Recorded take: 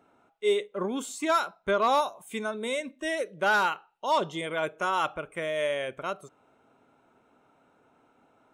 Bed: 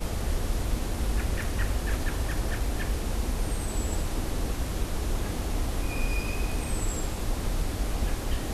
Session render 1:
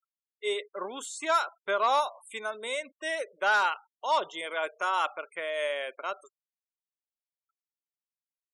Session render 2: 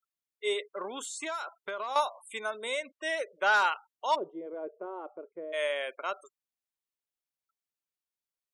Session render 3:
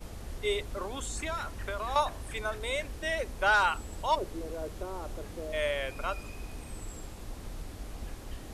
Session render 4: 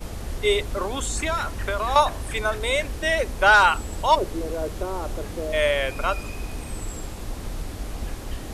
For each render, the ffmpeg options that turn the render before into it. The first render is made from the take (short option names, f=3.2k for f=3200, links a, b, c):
-af "highpass=580,afftfilt=real='re*gte(hypot(re,im),0.00501)':imag='im*gte(hypot(re,im),0.00501)':win_size=1024:overlap=0.75"
-filter_complex "[0:a]asettb=1/sr,asplit=3[a][b][c];[a]atrim=end=0.684[d];[b]atrim=start=0.68:end=1.96,asetpts=PTS-STARTPTS,afade=t=in:d=0.004:c=qsin,afade=t=out:st=1.276:d=0.004:c=qsin,acompressor=threshold=-31dB:ratio=12:attack=3.2:release=140:knee=1:detection=peak[e];[c]atrim=start=1.956[f];[d][e]acrossfade=d=0.004:c1=hsin:c2=qsin[g];[g][f]acrossfade=d=0.004:c1=qsin:c2=hsin,asettb=1/sr,asplit=3[h][i][j];[h]atrim=end=2.704[k];[i]atrim=start=2.7:end=3.56,asetpts=PTS-STARTPTS,afade=t=in:d=0.004:c=qsin,afade=t=out:st=0.856:d=0.004:c=qsin,lowpass=8.3k[l];[j]atrim=start=3.556[m];[k][l]acrossfade=d=0.004:c1=hsin:c2=qsin[n];[n][m]acrossfade=d=0.004:c1=qsin:c2=hsin,asplit=3[o][p][q];[o]afade=t=out:st=4.14:d=0.02[r];[p]lowpass=f=370:t=q:w=2,afade=t=in:st=4.14:d=0.02,afade=t=out:st=5.52:d=0.02[s];[q]afade=t=in:st=5.52:d=0.02[t];[r][s][t]amix=inputs=3:normalize=0"
-filter_complex "[1:a]volume=-12.5dB[a];[0:a][a]amix=inputs=2:normalize=0"
-af "volume=9.5dB"